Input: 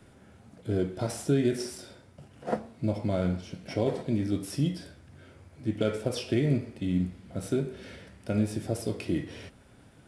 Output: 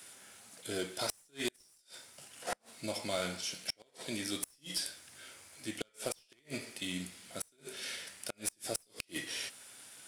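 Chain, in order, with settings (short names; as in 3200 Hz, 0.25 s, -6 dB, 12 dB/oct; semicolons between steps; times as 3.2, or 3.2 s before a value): differentiator; one-sided clip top -45 dBFS; flipped gate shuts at -37 dBFS, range -36 dB; gain +16.5 dB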